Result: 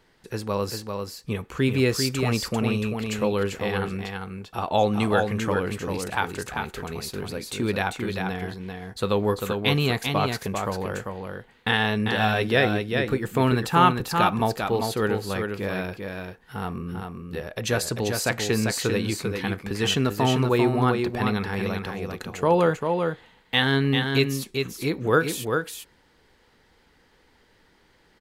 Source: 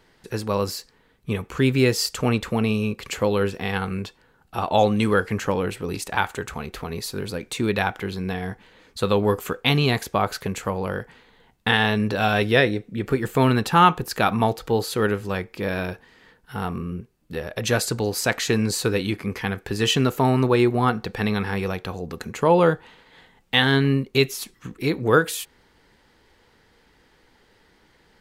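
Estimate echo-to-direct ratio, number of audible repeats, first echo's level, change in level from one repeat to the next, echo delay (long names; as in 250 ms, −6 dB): −5.0 dB, 1, −5.0 dB, repeats not evenly spaced, 395 ms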